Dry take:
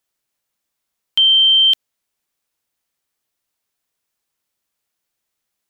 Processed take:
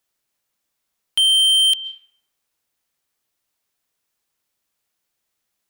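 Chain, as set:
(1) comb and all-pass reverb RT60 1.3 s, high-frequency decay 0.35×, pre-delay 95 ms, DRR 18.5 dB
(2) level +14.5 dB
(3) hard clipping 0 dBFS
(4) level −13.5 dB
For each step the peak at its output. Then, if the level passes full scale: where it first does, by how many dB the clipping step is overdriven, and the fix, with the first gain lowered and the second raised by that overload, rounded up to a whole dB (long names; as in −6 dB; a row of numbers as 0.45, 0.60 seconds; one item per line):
−7.5, +7.0, 0.0, −13.5 dBFS
step 2, 7.0 dB
step 2 +7.5 dB, step 4 −6.5 dB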